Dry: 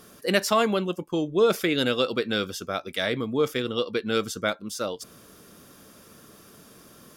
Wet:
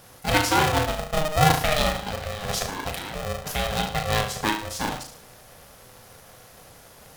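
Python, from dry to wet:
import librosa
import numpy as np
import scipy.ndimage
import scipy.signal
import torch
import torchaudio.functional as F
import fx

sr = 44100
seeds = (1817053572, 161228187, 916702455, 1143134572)

p1 = fx.over_compress(x, sr, threshold_db=-35.0, ratio=-1.0, at=(1.88, 3.52), fade=0.02)
p2 = p1 + fx.room_flutter(p1, sr, wall_m=6.2, rt60_s=0.5, dry=0)
y = p2 * np.sign(np.sin(2.0 * np.pi * 310.0 * np.arange(len(p2)) / sr))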